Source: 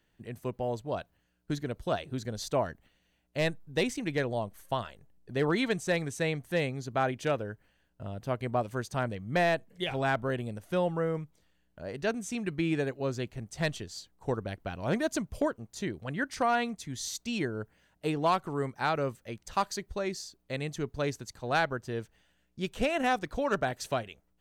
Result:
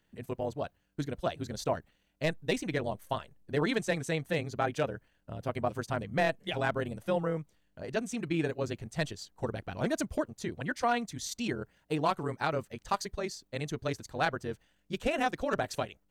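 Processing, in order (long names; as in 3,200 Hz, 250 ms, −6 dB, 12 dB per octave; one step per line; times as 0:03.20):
time stretch by overlap-add 0.66×, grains 50 ms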